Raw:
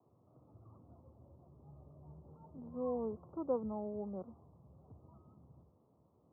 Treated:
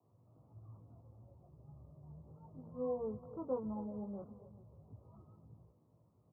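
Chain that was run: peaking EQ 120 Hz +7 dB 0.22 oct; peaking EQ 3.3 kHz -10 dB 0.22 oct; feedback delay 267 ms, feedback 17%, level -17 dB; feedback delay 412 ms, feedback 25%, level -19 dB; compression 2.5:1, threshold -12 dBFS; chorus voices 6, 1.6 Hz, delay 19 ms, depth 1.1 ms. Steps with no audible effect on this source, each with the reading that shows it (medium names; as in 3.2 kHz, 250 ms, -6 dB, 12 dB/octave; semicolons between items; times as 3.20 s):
peaking EQ 3.3 kHz: input has nothing above 1.1 kHz; compression, threshold -12 dBFS: peak at its input -23.5 dBFS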